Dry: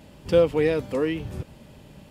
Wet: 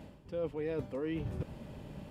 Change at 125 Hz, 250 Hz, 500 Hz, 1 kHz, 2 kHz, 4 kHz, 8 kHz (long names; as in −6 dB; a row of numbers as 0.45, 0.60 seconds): −8.5 dB, −11.0 dB, −15.5 dB, −14.0 dB, −16.0 dB, −17.5 dB, can't be measured